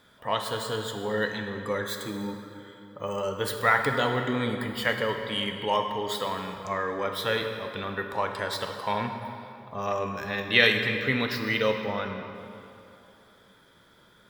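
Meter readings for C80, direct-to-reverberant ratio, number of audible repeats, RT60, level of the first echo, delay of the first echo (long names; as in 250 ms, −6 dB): 6.5 dB, 4.0 dB, no echo audible, 2.9 s, no echo audible, no echo audible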